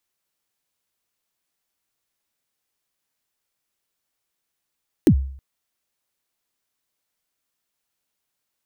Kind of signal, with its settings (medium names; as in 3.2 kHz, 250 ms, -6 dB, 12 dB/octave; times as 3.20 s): kick drum length 0.32 s, from 380 Hz, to 67 Hz, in 76 ms, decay 0.57 s, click on, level -7 dB